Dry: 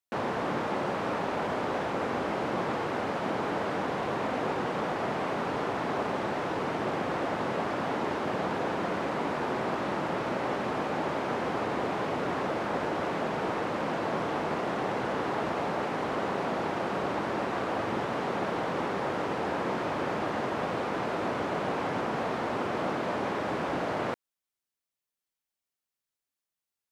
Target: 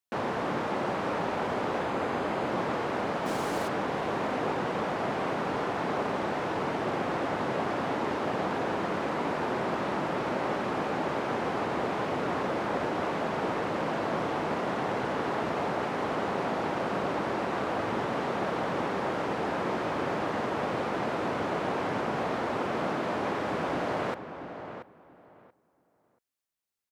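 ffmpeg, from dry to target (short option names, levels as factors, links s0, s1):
-filter_complex "[0:a]asettb=1/sr,asplit=3[s0][s1][s2];[s0]atrim=end=1.794[s3];[s1]atrim=start=1.79:end=2.5,asetpts=PTS-STARTPTS,afade=t=in:d=0.004:c=qsin,afade=t=out:st=0.706:d=0.004:c=qsin,bandreject=f=5600:w=11[s4];[s2]atrim=start=2.496[s5];[s3][s4]acrossfade=d=0.004:c1=hsin:c2=qsin[s6];[s6][s5]acrossfade=d=0.004:c1=qsin:c2=hsin,asplit=3[s7][s8][s9];[s7]afade=t=out:st=3.25:d=0.02[s10];[s8]acrusher=bits=5:mix=0:aa=0.5,afade=t=in:st=3.25:d=0.02,afade=t=out:st=3.67:d=0.02[s11];[s9]afade=t=in:st=3.67:d=0.02[s12];[s10][s11][s12]amix=inputs=3:normalize=0,asplit=2[s13][s14];[s14]adelay=682,lowpass=f=2400:p=1,volume=0.335,asplit=2[s15][s16];[s16]adelay=682,lowpass=f=2400:p=1,volume=0.19,asplit=2[s17][s18];[s18]adelay=682,lowpass=f=2400:p=1,volume=0.19[s19];[s15][s17][s19]amix=inputs=3:normalize=0[s20];[s13][s20]amix=inputs=2:normalize=0"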